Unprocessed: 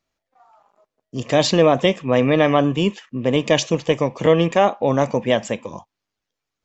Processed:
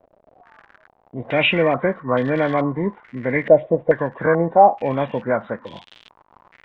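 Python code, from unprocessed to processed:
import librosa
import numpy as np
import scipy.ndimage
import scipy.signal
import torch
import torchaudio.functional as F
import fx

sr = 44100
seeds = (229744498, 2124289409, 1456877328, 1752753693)

y = fx.freq_compress(x, sr, knee_hz=1000.0, ratio=1.5)
y = fx.dmg_crackle(y, sr, seeds[0], per_s=120.0, level_db=-26.0)
y = fx.filter_held_lowpass(y, sr, hz=2.3, low_hz=620.0, high_hz=3300.0)
y = y * 10.0 ** (-4.0 / 20.0)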